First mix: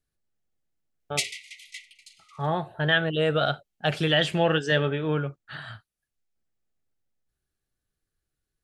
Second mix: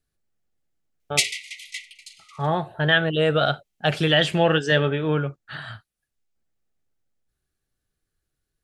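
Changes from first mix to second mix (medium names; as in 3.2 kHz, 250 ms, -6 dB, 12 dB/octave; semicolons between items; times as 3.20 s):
speech +3.5 dB; background +7.0 dB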